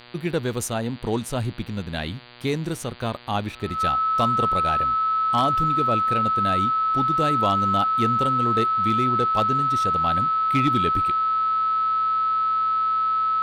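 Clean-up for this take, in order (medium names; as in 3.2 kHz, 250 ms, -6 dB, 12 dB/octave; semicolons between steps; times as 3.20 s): clip repair -12.5 dBFS; de-hum 120.9 Hz, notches 39; band-stop 1.3 kHz, Q 30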